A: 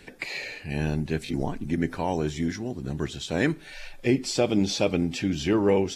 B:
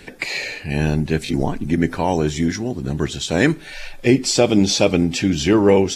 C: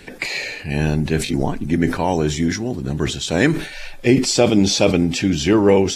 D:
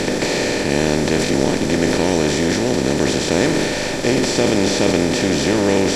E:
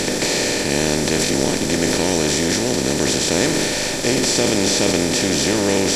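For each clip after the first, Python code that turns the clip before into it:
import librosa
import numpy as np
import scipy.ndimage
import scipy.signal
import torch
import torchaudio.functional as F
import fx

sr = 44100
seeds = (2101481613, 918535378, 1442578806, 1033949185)

y1 = fx.dynamic_eq(x, sr, hz=7000.0, q=0.99, threshold_db=-45.0, ratio=4.0, max_db=4)
y1 = y1 * 10.0 ** (8.0 / 20.0)
y2 = fx.sustainer(y1, sr, db_per_s=100.0)
y3 = fx.bin_compress(y2, sr, power=0.2)
y3 = y3 * 10.0 ** (-8.5 / 20.0)
y4 = fx.high_shelf(y3, sr, hz=4400.0, db=11.5)
y4 = y4 * 10.0 ** (-2.5 / 20.0)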